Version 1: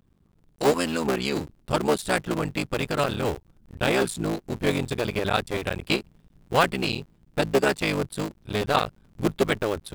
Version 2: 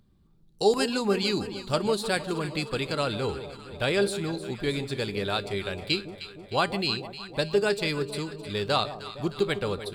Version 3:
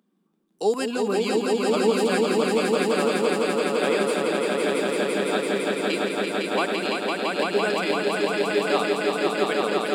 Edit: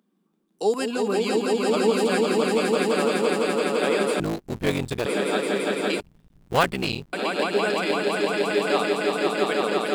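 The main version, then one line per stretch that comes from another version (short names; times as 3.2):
3
4.2–5.06 from 1
6–7.13 from 1
not used: 2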